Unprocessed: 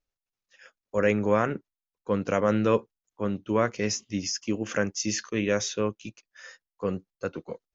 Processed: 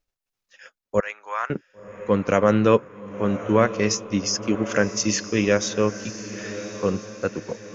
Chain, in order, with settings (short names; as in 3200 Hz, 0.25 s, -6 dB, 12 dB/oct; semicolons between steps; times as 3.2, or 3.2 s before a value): 1–1.5 ladder high-pass 800 Hz, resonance 30%; transient shaper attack 0 dB, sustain -6 dB; diffused feedback echo 1.082 s, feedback 41%, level -12 dB; gain +6 dB